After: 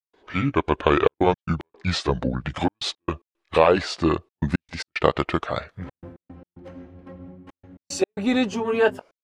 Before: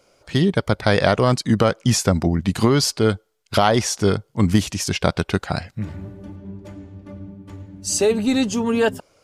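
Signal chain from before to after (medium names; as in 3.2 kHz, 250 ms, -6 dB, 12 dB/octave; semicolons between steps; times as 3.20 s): pitch bend over the whole clip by -6.5 st ending unshifted; tone controls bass -11 dB, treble -15 dB; trance gate ".xxxxxxx.x.x" 112 bpm -60 dB; trim +3 dB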